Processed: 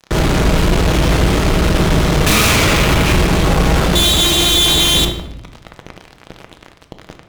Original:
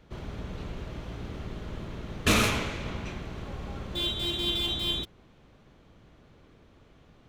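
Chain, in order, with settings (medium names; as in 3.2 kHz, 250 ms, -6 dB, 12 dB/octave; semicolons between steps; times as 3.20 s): hum notches 60/120/180/240/300/360 Hz; fuzz box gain 50 dB, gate -50 dBFS; simulated room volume 380 m³, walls mixed, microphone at 0.61 m; trim +1 dB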